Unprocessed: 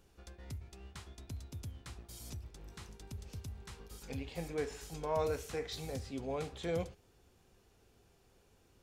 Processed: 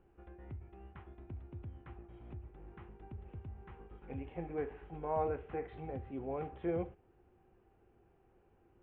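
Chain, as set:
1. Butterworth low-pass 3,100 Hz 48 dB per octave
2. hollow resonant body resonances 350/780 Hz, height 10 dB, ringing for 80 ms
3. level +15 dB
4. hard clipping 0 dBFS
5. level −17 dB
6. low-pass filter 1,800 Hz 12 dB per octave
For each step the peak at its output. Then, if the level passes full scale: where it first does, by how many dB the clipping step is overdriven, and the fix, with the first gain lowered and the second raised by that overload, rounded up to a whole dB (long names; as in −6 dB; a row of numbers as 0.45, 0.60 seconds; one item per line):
−22.0, −20.5, −5.5, −5.5, −22.5, −23.0 dBFS
no step passes full scale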